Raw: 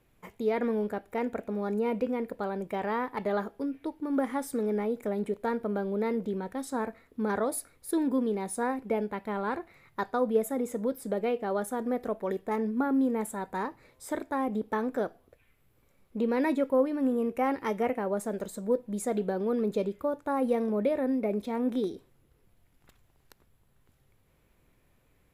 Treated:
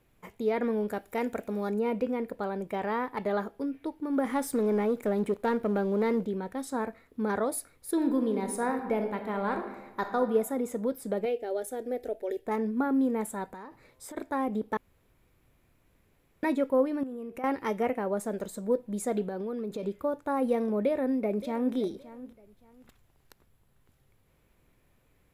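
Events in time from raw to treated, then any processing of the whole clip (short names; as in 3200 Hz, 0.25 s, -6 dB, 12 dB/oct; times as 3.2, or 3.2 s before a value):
0.88–1.7 high shelf 3700 Hz +10 dB
4.25–6.24 sample leveller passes 1
7.93–10.17 reverb throw, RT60 1.1 s, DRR 5.5 dB
11.25–12.46 fixed phaser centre 450 Hz, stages 4
13.47–14.17 compressor 16:1, threshold -39 dBFS
14.77–16.43 room tone
17.03–17.44 compressor 12:1, threshold -35 dBFS
19.28–19.83 compressor, threshold -31 dBFS
20.81–21.75 echo throw 0.57 s, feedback 25%, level -16 dB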